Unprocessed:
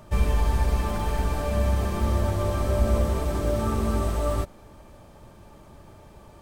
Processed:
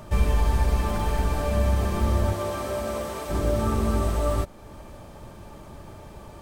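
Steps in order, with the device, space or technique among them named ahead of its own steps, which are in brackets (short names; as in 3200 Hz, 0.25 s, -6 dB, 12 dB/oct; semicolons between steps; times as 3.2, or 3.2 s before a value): parallel compression (in parallel at -1 dB: compressor, threshold -39 dBFS, peak gain reduction 21 dB); 2.33–3.29 on the sum: HPF 260 Hz -> 720 Hz 6 dB/oct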